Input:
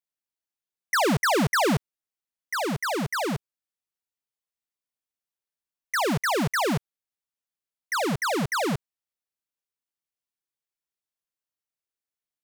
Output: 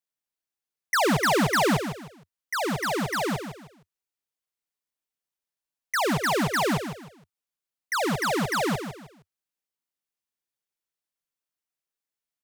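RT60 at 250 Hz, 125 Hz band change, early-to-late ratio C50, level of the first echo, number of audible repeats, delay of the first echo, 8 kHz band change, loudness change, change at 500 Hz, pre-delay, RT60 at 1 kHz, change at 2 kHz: no reverb, -0.5 dB, no reverb, -9.0 dB, 3, 155 ms, +0.5 dB, +0.5 dB, +0.5 dB, no reverb, no reverb, +0.5 dB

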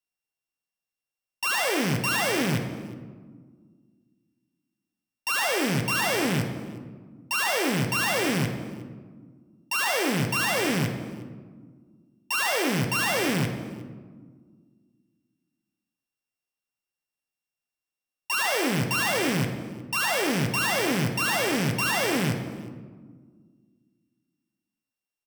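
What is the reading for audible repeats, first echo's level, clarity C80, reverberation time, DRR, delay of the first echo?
1, -21.5 dB, 9.0 dB, 1.6 s, 4.5 dB, 359 ms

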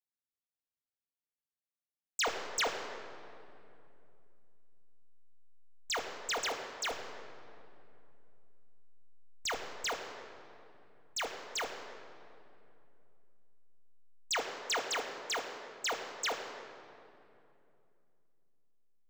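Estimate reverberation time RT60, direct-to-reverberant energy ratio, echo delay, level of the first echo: 2.7 s, 1.0 dB, no echo, no echo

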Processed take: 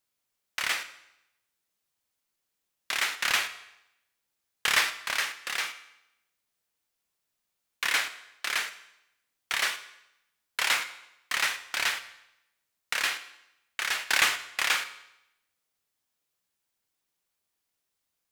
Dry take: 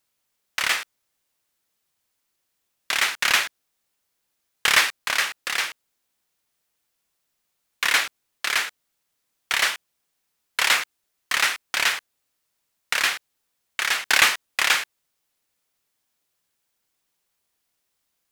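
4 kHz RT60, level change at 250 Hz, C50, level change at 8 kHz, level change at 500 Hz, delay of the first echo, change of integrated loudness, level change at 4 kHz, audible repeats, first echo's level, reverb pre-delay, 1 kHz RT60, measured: 0.80 s, -6.0 dB, 13.0 dB, -6.0 dB, -6.0 dB, no echo, -6.0 dB, -6.0 dB, no echo, no echo, 9 ms, 0.85 s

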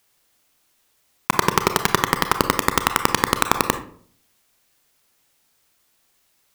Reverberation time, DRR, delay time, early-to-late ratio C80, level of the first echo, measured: 0.55 s, 8.0 dB, no echo, 16.0 dB, no echo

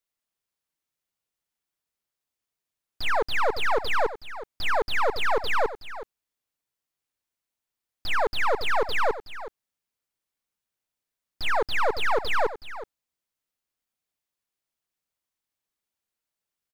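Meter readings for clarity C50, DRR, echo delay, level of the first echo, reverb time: no reverb, no reverb, 371 ms, -13.5 dB, no reverb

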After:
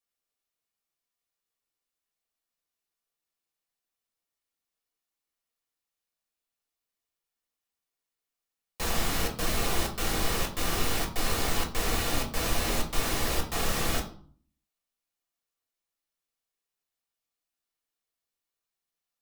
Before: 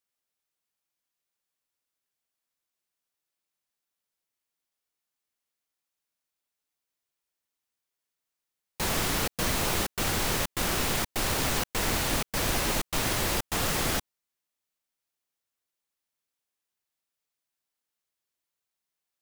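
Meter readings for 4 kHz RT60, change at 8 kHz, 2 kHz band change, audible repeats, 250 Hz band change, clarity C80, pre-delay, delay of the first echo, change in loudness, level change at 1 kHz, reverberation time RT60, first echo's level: 0.35 s, -3.0 dB, -2.5 dB, no echo, -1.5 dB, 14.5 dB, 3 ms, no echo, -2.0 dB, -1.0 dB, 0.50 s, no echo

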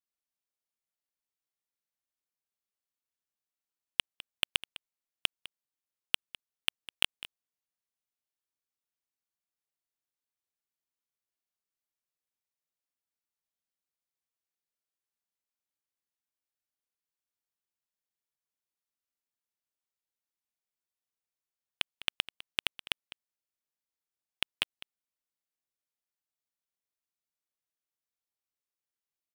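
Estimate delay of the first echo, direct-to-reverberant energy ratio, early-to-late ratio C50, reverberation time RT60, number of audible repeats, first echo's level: 204 ms, no reverb, no reverb, no reverb, 1, -17.5 dB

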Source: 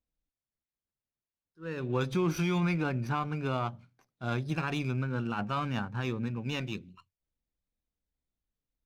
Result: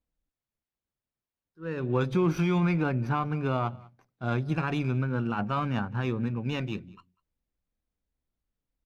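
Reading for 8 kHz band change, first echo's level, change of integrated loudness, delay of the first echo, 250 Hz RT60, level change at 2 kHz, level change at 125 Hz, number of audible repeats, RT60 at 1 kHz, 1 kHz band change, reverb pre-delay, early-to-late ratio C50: no reading, -24.0 dB, +3.5 dB, 196 ms, no reverb, +1.5 dB, +4.0 dB, 1, no reverb, +3.0 dB, no reverb, no reverb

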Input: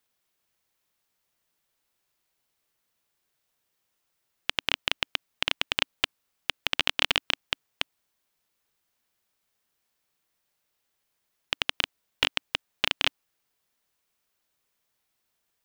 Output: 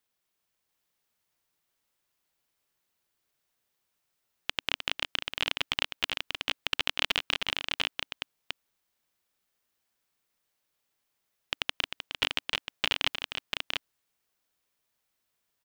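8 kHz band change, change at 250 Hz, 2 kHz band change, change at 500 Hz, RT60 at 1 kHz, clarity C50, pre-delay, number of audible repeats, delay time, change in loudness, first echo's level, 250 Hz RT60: -2.0 dB, -2.0 dB, -2.0 dB, -2.5 dB, no reverb, no reverb, no reverb, 2, 308 ms, -3.0 dB, -8.0 dB, no reverb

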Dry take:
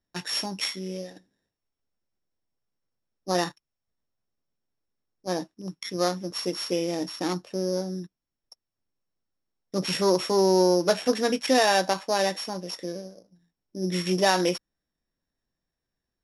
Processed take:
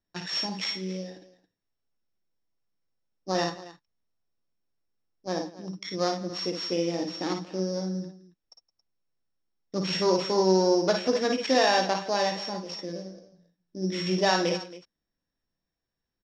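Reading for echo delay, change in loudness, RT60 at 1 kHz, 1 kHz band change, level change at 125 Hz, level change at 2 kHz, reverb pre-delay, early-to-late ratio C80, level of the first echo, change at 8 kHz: 53 ms, -1.5 dB, no reverb, -1.0 dB, -0.5 dB, -1.5 dB, no reverb, no reverb, -7.0 dB, -5.0 dB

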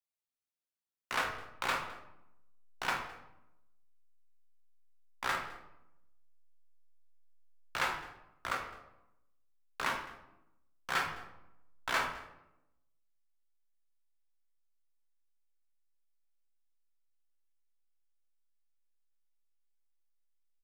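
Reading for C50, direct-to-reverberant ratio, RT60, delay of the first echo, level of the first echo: 7.0 dB, 2.0 dB, 0.90 s, 210 ms, -20.5 dB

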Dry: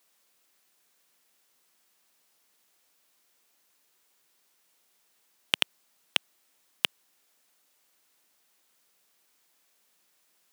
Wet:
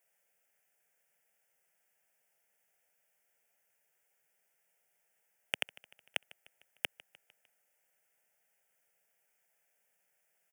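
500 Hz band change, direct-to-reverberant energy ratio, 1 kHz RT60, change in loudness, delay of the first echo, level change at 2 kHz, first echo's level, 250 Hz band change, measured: -4.5 dB, no reverb, no reverb, -9.5 dB, 151 ms, -6.5 dB, -21.5 dB, -13.0 dB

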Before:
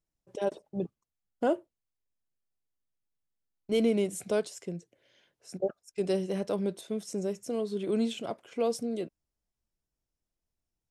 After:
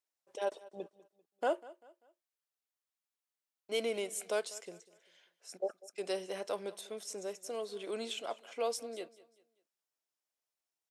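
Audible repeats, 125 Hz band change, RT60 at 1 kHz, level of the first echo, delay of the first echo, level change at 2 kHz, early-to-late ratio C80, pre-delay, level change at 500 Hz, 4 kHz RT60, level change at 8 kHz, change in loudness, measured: 2, under -20 dB, no reverb, -20.0 dB, 196 ms, 0.0 dB, no reverb, no reverb, -6.5 dB, no reverb, 0.0 dB, -6.5 dB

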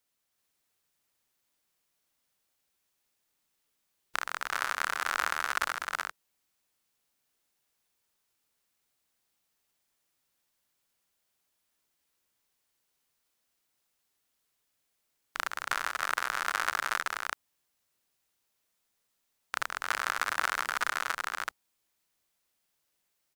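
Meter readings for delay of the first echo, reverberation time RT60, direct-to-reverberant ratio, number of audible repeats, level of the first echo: 314 ms, no reverb, no reverb, 2, -6.0 dB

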